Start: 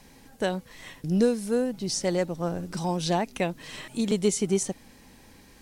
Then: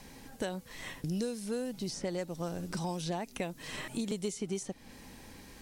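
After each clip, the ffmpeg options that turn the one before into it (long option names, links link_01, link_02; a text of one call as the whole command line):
ffmpeg -i in.wav -filter_complex "[0:a]acrossover=split=2600|5400[link_01][link_02][link_03];[link_01]acompressor=threshold=-36dB:ratio=4[link_04];[link_02]acompressor=threshold=-53dB:ratio=4[link_05];[link_03]acompressor=threshold=-50dB:ratio=4[link_06];[link_04][link_05][link_06]amix=inputs=3:normalize=0,volume=1.5dB" out.wav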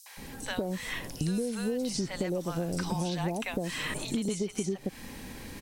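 ffmpeg -i in.wav -filter_complex "[0:a]acrossover=split=780|5600[link_01][link_02][link_03];[link_02]adelay=60[link_04];[link_01]adelay=170[link_05];[link_05][link_04][link_03]amix=inputs=3:normalize=0,acompressor=threshold=-36dB:ratio=4,volume=8.5dB" out.wav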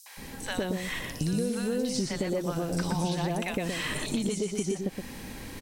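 ffmpeg -i in.wav -af "aecho=1:1:120:0.562,volume=1dB" out.wav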